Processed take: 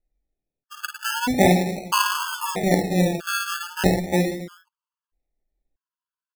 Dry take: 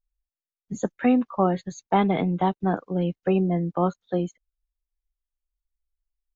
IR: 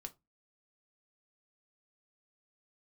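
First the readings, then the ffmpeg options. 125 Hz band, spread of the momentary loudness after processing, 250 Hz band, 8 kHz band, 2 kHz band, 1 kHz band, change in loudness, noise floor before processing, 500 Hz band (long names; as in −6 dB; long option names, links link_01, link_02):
+2.0 dB, 12 LU, 0.0 dB, can't be measured, +11.5 dB, +2.0 dB, +2.5 dB, below −85 dBFS, +1.5 dB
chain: -af "aecho=1:1:50|110|182|268.4|372.1:0.631|0.398|0.251|0.158|0.1,acrusher=samples=34:mix=1:aa=0.000001:lfo=1:lforange=20.4:lforate=0.37,afftfilt=real='re*gt(sin(2*PI*0.78*pts/sr)*(1-2*mod(floor(b*sr/1024/870),2)),0)':imag='im*gt(sin(2*PI*0.78*pts/sr)*(1-2*mod(floor(b*sr/1024/870),2)),0)':win_size=1024:overlap=0.75,volume=4dB"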